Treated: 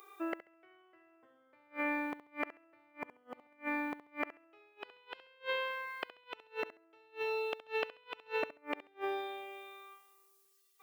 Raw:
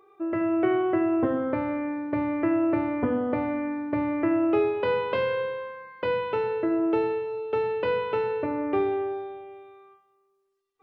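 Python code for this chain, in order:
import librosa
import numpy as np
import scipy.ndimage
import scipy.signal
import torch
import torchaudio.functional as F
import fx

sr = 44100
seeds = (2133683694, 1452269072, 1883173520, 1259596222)

y = fx.gate_flip(x, sr, shuts_db=-20.0, range_db=-36)
y = np.diff(y, prepend=0.0)
y = fx.room_flutter(y, sr, wall_m=11.7, rt60_s=0.27)
y = F.gain(torch.from_numpy(y), 18.0).numpy()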